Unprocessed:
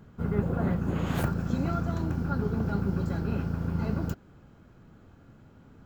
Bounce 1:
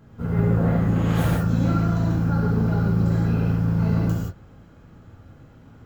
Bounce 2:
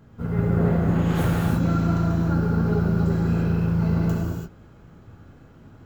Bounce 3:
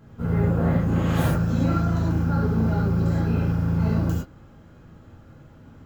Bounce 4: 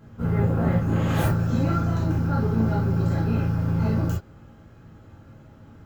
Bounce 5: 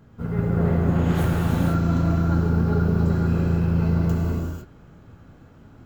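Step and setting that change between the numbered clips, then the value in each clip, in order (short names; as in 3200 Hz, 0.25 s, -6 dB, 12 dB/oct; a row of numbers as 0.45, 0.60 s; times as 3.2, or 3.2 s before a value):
non-linear reverb, gate: 200, 360, 130, 80, 530 ms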